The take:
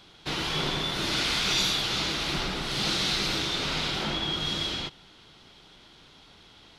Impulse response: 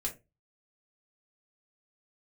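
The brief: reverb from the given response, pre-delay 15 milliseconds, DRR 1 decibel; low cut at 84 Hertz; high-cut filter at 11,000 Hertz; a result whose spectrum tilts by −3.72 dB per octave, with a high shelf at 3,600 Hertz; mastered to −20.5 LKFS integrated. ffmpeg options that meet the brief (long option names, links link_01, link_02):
-filter_complex "[0:a]highpass=84,lowpass=11000,highshelf=frequency=3600:gain=-8.5,asplit=2[link_01][link_02];[1:a]atrim=start_sample=2205,adelay=15[link_03];[link_02][link_03]afir=irnorm=-1:irlink=0,volume=-2.5dB[link_04];[link_01][link_04]amix=inputs=2:normalize=0,volume=7dB"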